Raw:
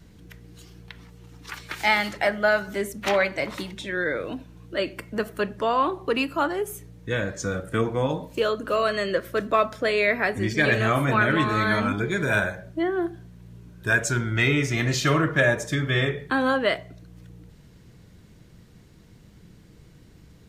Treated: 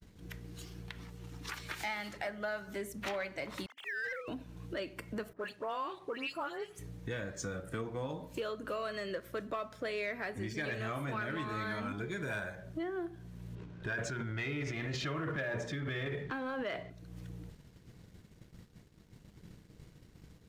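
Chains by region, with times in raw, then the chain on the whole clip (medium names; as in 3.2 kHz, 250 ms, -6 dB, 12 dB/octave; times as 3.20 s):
3.66–4.28 s: formants replaced by sine waves + high-pass 1 kHz + waveshaping leveller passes 1
5.33–6.79 s: high-pass 540 Hz 6 dB/octave + treble shelf 11 kHz -9 dB + phase dispersion highs, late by 124 ms, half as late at 2.7 kHz
13.55–16.90 s: low-pass 3.6 kHz + hum notches 60/120/180/240 Hz + transient shaper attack +1 dB, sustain +11 dB
whole clip: expander -44 dBFS; compression 3:1, threshold -41 dBFS; waveshaping leveller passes 1; trim -3 dB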